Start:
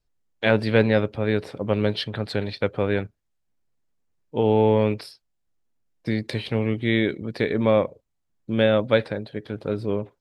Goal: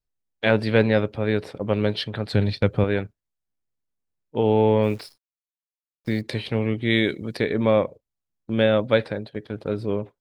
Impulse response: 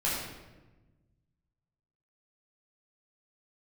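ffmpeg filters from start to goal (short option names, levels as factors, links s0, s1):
-filter_complex "[0:a]agate=range=0.355:threshold=0.0158:ratio=16:detection=peak,asettb=1/sr,asplit=3[s0][s1][s2];[s0]atrim=end=2.334[s3];[s1]atrim=start=2.33:end=2.84,asetpts=PTS-STARTPTS,afade=t=in:d=0.004:c=qsin,afade=t=out:st=0.506:d=0.004:c=qsin,bass=f=250:g=10,treble=f=4000:g=4[s4];[s2]atrim=start=2.836[s5];[s3][s4]acrossfade=d=0.004:c1=hsin:c2=qsin[s6];[s6][s5]acrossfade=d=0.004:c1=qsin:c2=hsin,asplit=3[s7][s8][s9];[s7]afade=t=out:st=4.82:d=0.02[s10];[s8]acrusher=bits=9:dc=4:mix=0:aa=0.000001,afade=t=in:st=4.82:d=0.02,afade=t=out:st=6.2:d=0.02[s11];[s9]afade=t=in:st=6.2:d=0.02[s12];[s10][s11][s12]amix=inputs=3:normalize=0,asettb=1/sr,asplit=3[s13][s14][s15];[s13]atrim=end=6.904[s16];[s14]atrim=start=6.9:end=7.37,asetpts=PTS-STARTPTS,afade=t=in:d=0.004:c=qsin,afade=t=out:st=0.466:d=0.004:c=qsin,highshelf=f=3700:g=11.5[s17];[s15]atrim=start=7.366[s18];[s16][s17]acrossfade=d=0.004:c1=hsin:c2=qsin[s19];[s19][s18]acrossfade=d=0.004:c1=qsin:c2=hsin"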